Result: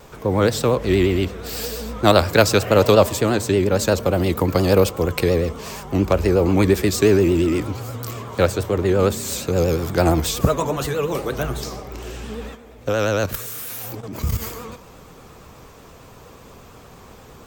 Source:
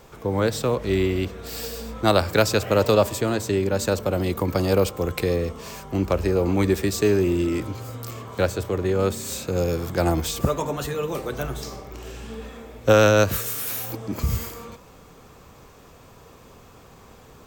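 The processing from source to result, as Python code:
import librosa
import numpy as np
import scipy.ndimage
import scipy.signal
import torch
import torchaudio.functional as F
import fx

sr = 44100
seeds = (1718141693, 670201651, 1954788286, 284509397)

y = fx.level_steps(x, sr, step_db=12, at=(12.54, 14.41), fade=0.02)
y = fx.vibrato(y, sr, rate_hz=8.5, depth_cents=97.0)
y = y * librosa.db_to_amplitude(4.5)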